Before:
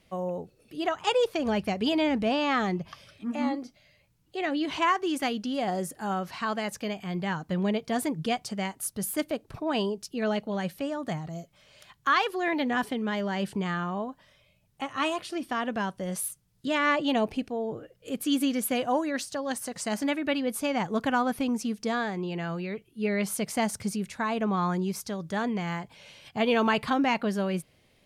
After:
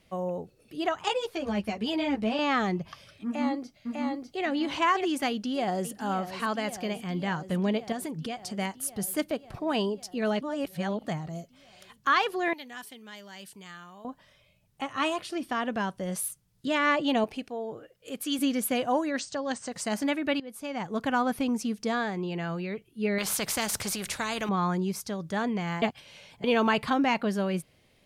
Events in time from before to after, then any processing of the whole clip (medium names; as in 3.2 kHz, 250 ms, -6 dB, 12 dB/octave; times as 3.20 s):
1.08–2.39 s: three-phase chorus
3.25–4.44 s: echo throw 600 ms, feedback 25%, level -2.5 dB
5.29–5.94 s: echo throw 550 ms, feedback 80%, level -11.5 dB
7.92–8.54 s: compression 5:1, threshold -31 dBFS
10.41–11.05 s: reverse
12.53–14.05 s: pre-emphasis filter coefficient 0.9
17.24–18.39 s: bass shelf 360 Hz -9 dB
19.19–19.72 s: steep low-pass 8.5 kHz 96 dB/octave
20.40–21.24 s: fade in linear, from -16.5 dB
23.18–24.49 s: spectrum-flattening compressor 2:1
25.82–26.44 s: reverse